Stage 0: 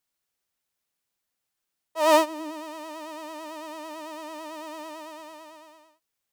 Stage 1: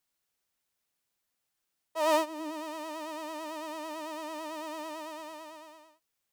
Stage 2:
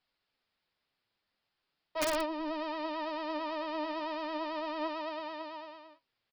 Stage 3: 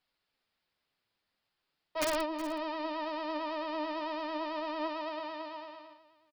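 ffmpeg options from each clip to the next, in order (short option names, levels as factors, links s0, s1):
-af "acompressor=threshold=0.0158:ratio=1.5"
-af "aresample=11025,asoftclip=type=tanh:threshold=0.0224,aresample=44100,flanger=delay=1.2:depth=8.8:regen=74:speed=0.39:shape=triangular,aeval=exprs='(mod(56.2*val(0)+1,2)-1)/56.2':c=same,volume=2.66"
-af "aecho=1:1:370:0.168"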